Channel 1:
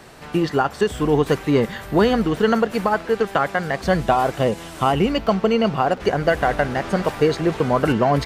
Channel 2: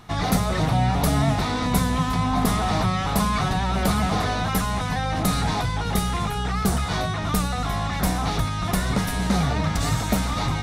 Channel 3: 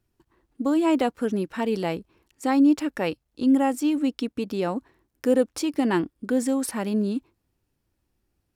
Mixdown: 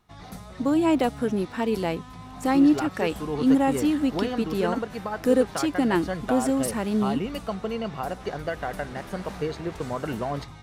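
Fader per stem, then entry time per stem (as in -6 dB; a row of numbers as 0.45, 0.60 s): -12.0, -19.5, 0.0 dB; 2.20, 0.00, 0.00 s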